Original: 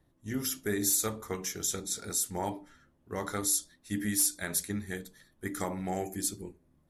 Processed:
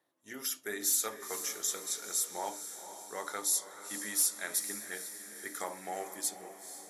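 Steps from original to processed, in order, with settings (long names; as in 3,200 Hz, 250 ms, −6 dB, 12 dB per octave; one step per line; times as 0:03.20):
high-pass filter 530 Hz 12 dB per octave
on a send: feedback delay with all-pass diffusion 474 ms, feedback 54%, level −10.5 dB
on the sum: level −1.5 dB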